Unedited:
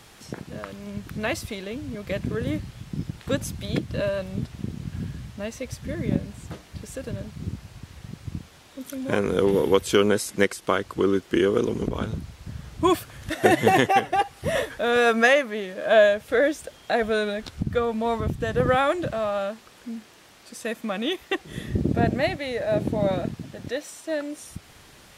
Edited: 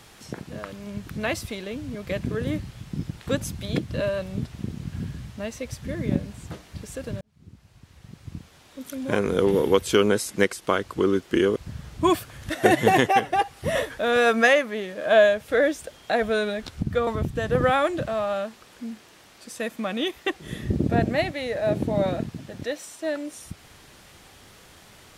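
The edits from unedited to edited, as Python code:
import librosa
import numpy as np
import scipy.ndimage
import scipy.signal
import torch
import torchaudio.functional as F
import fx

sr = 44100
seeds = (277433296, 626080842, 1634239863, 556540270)

y = fx.edit(x, sr, fx.fade_in_span(start_s=7.21, length_s=1.78),
    fx.cut(start_s=11.56, length_s=0.8),
    fx.cut(start_s=17.87, length_s=0.25), tone=tone)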